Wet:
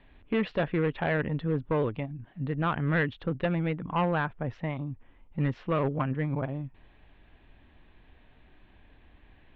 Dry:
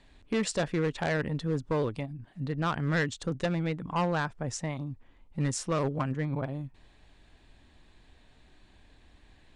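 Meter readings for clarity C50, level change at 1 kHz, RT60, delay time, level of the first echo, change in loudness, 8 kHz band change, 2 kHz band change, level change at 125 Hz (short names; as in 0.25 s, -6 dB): none, +1.5 dB, none, none, none, +1.5 dB, under -35 dB, +1.5 dB, +1.5 dB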